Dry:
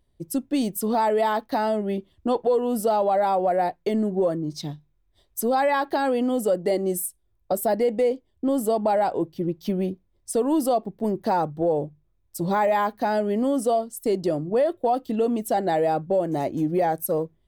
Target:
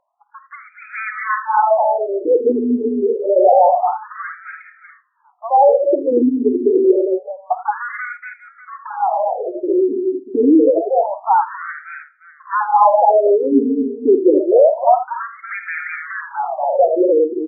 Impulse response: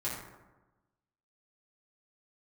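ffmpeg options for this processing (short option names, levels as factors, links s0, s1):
-filter_complex "[0:a]asettb=1/sr,asplit=3[s0][s1][s2];[s0]atrim=end=8.054[s3];[s1]atrim=start=8.05:end=9.62,asetpts=PTS-STARTPTS,afade=t=in:d=0.004:c=qsin,afade=t=out:st=1.566:d=0.004:c=qsin,acompressor=threshold=0.0501:ratio=6[s4];[s2]atrim=start=9.616[s5];[s3][s4]acrossfade=d=0.004:c1=hsin:c2=qsin[s6];[s6][s5]acrossfade=d=0.004:c1=qsin:c2=hsin,asoftclip=type=tanh:threshold=0.1,highpass=110,lowpass=5700,aecho=1:1:53|81|238|283|596:0.211|0.251|0.562|0.316|0.168,asplit=2[s7][s8];[1:a]atrim=start_sample=2205[s9];[s8][s9]afir=irnorm=-1:irlink=0,volume=0.0841[s10];[s7][s10]amix=inputs=2:normalize=0,alimiter=level_in=5.31:limit=0.891:release=50:level=0:latency=1,afftfilt=real='re*between(b*sr/1024,310*pow(1800/310,0.5+0.5*sin(2*PI*0.27*pts/sr))/1.41,310*pow(1800/310,0.5+0.5*sin(2*PI*0.27*pts/sr))*1.41)':imag='im*between(b*sr/1024,310*pow(1800/310,0.5+0.5*sin(2*PI*0.27*pts/sr))/1.41,310*pow(1800/310,0.5+0.5*sin(2*PI*0.27*pts/sr))*1.41)':win_size=1024:overlap=0.75"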